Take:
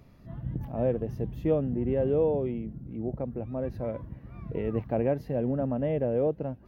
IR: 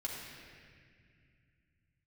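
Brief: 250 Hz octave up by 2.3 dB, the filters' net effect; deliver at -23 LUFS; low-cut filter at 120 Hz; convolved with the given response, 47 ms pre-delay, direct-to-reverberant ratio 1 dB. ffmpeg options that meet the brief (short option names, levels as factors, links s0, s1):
-filter_complex "[0:a]highpass=120,equalizer=f=250:t=o:g=3,asplit=2[s0][s1];[1:a]atrim=start_sample=2205,adelay=47[s2];[s1][s2]afir=irnorm=-1:irlink=0,volume=0.75[s3];[s0][s3]amix=inputs=2:normalize=0,volume=1.5"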